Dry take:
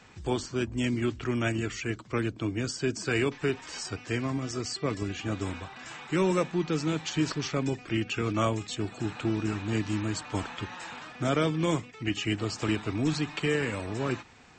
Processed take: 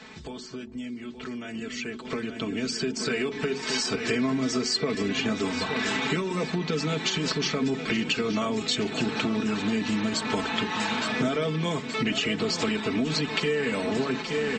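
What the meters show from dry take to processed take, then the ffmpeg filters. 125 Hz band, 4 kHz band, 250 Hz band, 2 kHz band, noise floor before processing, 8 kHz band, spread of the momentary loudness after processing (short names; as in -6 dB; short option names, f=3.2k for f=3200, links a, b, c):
-3.0 dB, +8.0 dB, +2.5 dB, +5.0 dB, -49 dBFS, +4.5 dB, 9 LU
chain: -af "alimiter=limit=-23dB:level=0:latency=1:release=16,aecho=1:1:4.6:0.73,aecho=1:1:870|1740|2610|3480|4350|5220:0.2|0.112|0.0626|0.035|0.0196|0.011,acompressor=threshold=-42dB:ratio=16,bass=f=250:g=-3,treble=f=4k:g=1,bandreject=f=46.54:t=h:w=4,bandreject=f=93.08:t=h:w=4,bandreject=f=139.62:t=h:w=4,bandreject=f=186.16:t=h:w=4,bandreject=f=232.7:t=h:w=4,bandreject=f=279.24:t=h:w=4,bandreject=f=325.78:t=h:w=4,bandreject=f=372.32:t=h:w=4,bandreject=f=418.86:t=h:w=4,dynaudnorm=f=280:g=17:m=11.5dB,equalizer=f=125:t=o:w=1:g=7,equalizer=f=250:t=o:w=1:g=8,equalizer=f=500:t=o:w=1:g=6,equalizer=f=1k:t=o:w=1:g=3,equalizer=f=2k:t=o:w=1:g=5,equalizer=f=4k:t=o:w=1:g=9"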